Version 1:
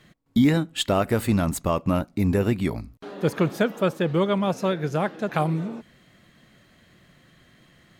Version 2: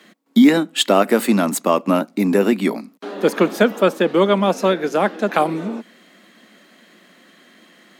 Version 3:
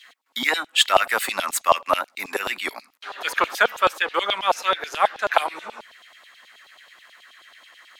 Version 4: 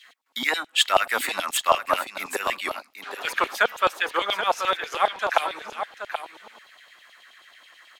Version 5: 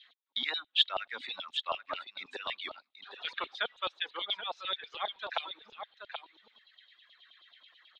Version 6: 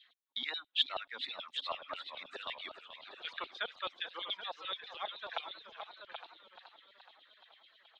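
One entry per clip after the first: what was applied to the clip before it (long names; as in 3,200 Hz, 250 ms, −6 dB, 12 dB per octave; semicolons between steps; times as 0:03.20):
Butterworth high-pass 200 Hz 48 dB per octave; level +8 dB
auto-filter high-pass saw down 9.3 Hz 700–3,700 Hz; level −1 dB
single-tap delay 779 ms −9 dB; level −2.5 dB
reverb reduction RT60 1.9 s; speech leveller within 4 dB 2 s; transistor ladder low-pass 3,900 Hz, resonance 75%; level −4 dB
feedback echo with a swinging delay time 428 ms, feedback 61%, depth 142 cents, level −11.5 dB; level −5 dB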